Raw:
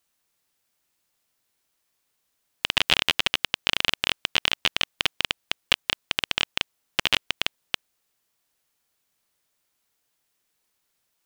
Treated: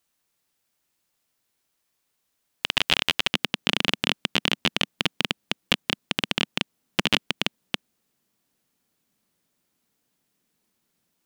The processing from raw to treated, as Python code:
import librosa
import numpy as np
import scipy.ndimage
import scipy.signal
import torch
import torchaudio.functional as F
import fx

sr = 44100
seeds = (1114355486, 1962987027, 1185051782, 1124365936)

y = fx.peak_eq(x, sr, hz=210.0, db=fx.steps((0.0, 3.0), (3.34, 15.0)), octaves=1.7)
y = y * librosa.db_to_amplitude(-1.0)